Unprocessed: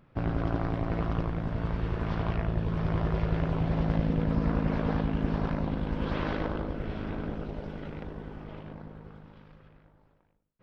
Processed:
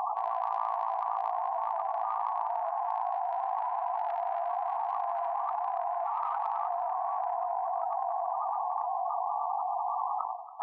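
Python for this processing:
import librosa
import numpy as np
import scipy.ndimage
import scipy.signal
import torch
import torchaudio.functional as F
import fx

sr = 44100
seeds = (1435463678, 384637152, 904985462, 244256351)

p1 = scipy.signal.sosfilt(scipy.signal.butter(6, 950.0, 'lowpass', fs=sr, output='sos'), x)
p2 = fx.spec_gate(p1, sr, threshold_db=-30, keep='strong')
p3 = fx.formant_shift(p2, sr, semitones=6)
p4 = 10.0 ** (-31.5 / 20.0) * np.tanh(p3 / 10.0 ** (-31.5 / 20.0))
p5 = p3 + F.gain(torch.from_numpy(p4), -7.5).numpy()
p6 = fx.brickwall_highpass(p5, sr, low_hz=670.0)
p7 = fx.echo_feedback(p6, sr, ms=281, feedback_pct=34, wet_db=-17.0)
y = fx.env_flatten(p7, sr, amount_pct=100)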